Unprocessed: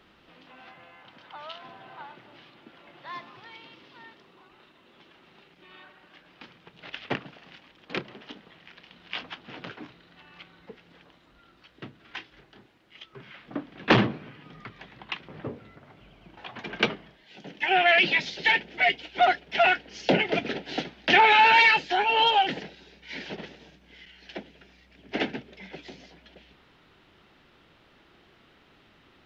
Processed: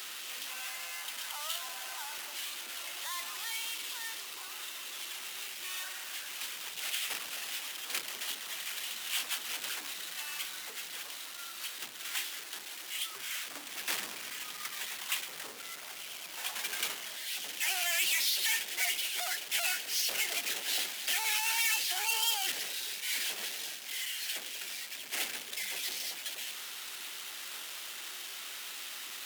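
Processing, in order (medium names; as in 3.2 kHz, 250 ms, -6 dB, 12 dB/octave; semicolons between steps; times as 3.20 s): peak limiter -17.5 dBFS, peak gain reduction 11 dB; power-law waveshaper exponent 0.35; high-pass 230 Hz 6 dB/octave; differentiator; AAC 96 kbps 48 kHz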